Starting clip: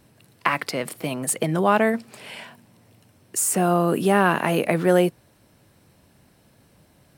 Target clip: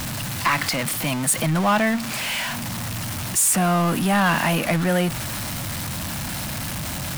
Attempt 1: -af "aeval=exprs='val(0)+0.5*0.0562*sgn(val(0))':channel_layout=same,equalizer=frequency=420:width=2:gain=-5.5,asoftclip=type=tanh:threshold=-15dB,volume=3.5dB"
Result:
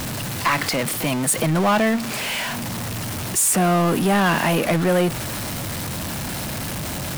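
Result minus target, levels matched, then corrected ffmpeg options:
500 Hz band +3.0 dB
-af "aeval=exprs='val(0)+0.5*0.0562*sgn(val(0))':channel_layout=same,equalizer=frequency=420:width=2:gain=-16,asoftclip=type=tanh:threshold=-15dB,volume=3.5dB"

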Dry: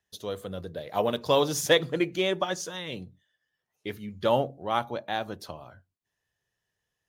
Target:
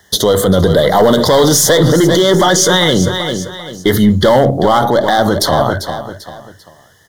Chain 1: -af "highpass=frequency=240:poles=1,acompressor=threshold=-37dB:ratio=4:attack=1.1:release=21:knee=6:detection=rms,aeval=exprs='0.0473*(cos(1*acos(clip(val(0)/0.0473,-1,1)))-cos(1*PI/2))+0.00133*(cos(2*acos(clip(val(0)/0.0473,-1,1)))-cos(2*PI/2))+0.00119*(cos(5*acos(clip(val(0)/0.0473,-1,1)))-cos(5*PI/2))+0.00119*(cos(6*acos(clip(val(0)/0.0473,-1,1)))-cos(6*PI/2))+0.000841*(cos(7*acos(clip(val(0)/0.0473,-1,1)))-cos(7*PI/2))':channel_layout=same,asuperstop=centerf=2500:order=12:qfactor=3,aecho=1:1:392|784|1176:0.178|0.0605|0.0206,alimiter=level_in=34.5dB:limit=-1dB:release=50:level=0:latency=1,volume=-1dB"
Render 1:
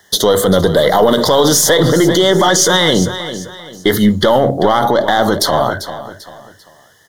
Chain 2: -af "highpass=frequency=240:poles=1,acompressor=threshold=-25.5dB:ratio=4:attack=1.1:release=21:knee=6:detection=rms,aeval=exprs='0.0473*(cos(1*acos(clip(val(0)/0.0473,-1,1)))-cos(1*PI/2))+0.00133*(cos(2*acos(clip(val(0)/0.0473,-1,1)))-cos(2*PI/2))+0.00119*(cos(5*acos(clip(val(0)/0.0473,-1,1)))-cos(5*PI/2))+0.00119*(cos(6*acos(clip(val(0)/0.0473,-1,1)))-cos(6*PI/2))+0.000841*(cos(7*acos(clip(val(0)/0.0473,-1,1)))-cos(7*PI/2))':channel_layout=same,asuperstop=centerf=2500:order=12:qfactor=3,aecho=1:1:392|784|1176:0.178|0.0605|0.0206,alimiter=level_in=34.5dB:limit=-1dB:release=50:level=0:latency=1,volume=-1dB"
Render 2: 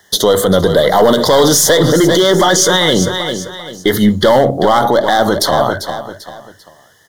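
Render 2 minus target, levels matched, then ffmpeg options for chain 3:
125 Hz band −4.0 dB
-af "highpass=frequency=63:poles=1,acompressor=threshold=-25.5dB:ratio=4:attack=1.1:release=21:knee=6:detection=rms,aeval=exprs='0.0473*(cos(1*acos(clip(val(0)/0.0473,-1,1)))-cos(1*PI/2))+0.00133*(cos(2*acos(clip(val(0)/0.0473,-1,1)))-cos(2*PI/2))+0.00119*(cos(5*acos(clip(val(0)/0.0473,-1,1)))-cos(5*PI/2))+0.00119*(cos(6*acos(clip(val(0)/0.0473,-1,1)))-cos(6*PI/2))+0.000841*(cos(7*acos(clip(val(0)/0.0473,-1,1)))-cos(7*PI/2))':channel_layout=same,asuperstop=centerf=2500:order=12:qfactor=3,aecho=1:1:392|784|1176:0.178|0.0605|0.0206,alimiter=level_in=34.5dB:limit=-1dB:release=50:level=0:latency=1,volume=-1dB"

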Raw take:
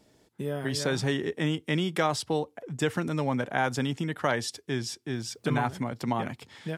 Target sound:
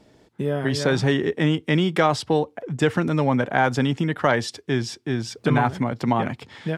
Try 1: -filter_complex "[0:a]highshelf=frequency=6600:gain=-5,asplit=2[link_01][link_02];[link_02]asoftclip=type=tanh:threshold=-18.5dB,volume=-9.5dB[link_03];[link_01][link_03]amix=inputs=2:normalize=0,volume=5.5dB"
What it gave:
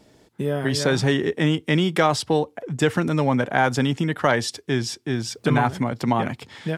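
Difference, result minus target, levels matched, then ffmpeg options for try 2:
8,000 Hz band +4.5 dB
-filter_complex "[0:a]highshelf=frequency=6600:gain=-14,asplit=2[link_01][link_02];[link_02]asoftclip=type=tanh:threshold=-18.5dB,volume=-9.5dB[link_03];[link_01][link_03]amix=inputs=2:normalize=0,volume=5.5dB"

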